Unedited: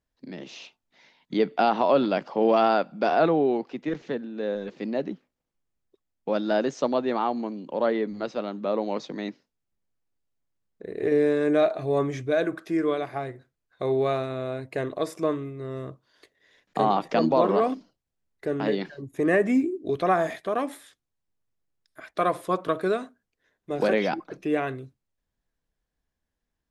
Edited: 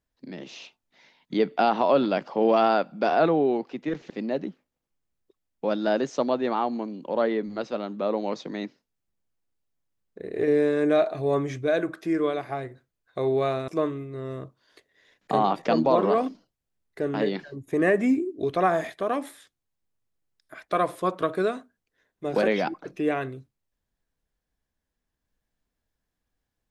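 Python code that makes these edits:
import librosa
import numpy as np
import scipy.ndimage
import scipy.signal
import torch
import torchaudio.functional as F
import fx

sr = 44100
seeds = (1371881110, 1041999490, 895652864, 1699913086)

y = fx.edit(x, sr, fx.cut(start_s=4.1, length_s=0.64),
    fx.cut(start_s=14.32, length_s=0.82), tone=tone)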